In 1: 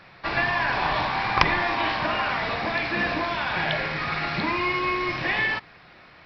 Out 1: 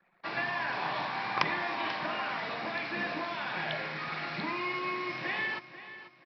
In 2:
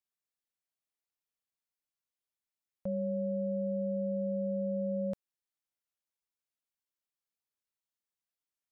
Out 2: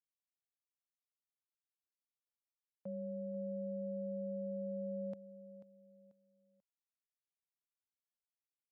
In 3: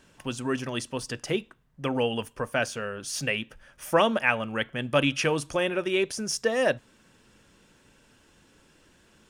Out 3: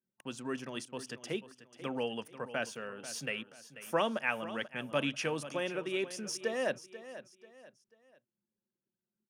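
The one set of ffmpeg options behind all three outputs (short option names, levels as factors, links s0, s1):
-af "highpass=f=140:w=0.5412,highpass=f=140:w=1.3066,anlmdn=0.0398,aecho=1:1:489|978|1467:0.2|0.0698|0.0244,volume=0.355"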